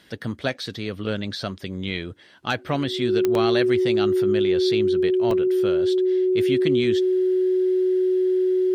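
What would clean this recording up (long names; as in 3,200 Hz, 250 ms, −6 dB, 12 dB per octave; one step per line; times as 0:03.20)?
click removal
notch filter 370 Hz, Q 30
repair the gap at 0:03.35/0:05.31, 1.9 ms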